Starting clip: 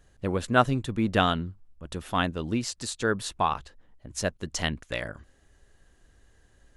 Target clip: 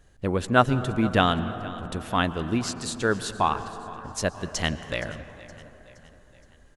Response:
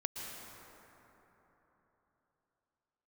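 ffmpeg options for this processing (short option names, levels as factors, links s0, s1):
-filter_complex "[0:a]aecho=1:1:469|938|1407|1876:0.112|0.0572|0.0292|0.0149,asplit=2[s0][s1];[1:a]atrim=start_sample=2205,highshelf=f=4900:g=-9[s2];[s1][s2]afir=irnorm=-1:irlink=0,volume=0.376[s3];[s0][s3]amix=inputs=2:normalize=0"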